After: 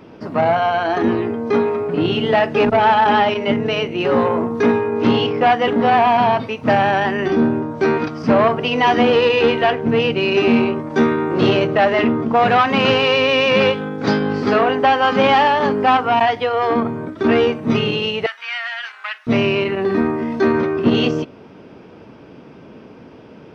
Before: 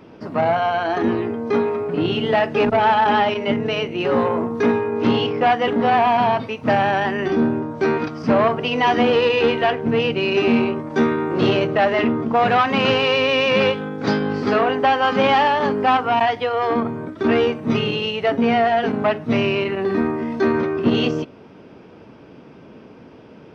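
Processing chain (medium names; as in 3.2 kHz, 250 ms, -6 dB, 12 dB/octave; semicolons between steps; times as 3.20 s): 18.26–19.27 s: high-pass 1.4 kHz 24 dB/octave; trim +2.5 dB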